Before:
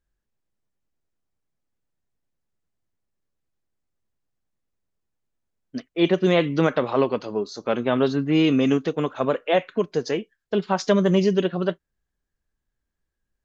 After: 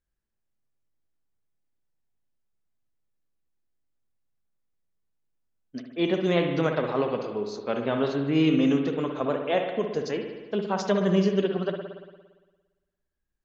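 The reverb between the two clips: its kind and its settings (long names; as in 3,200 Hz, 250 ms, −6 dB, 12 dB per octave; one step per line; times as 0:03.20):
spring reverb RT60 1.3 s, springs 57 ms, chirp 20 ms, DRR 4 dB
level −5.5 dB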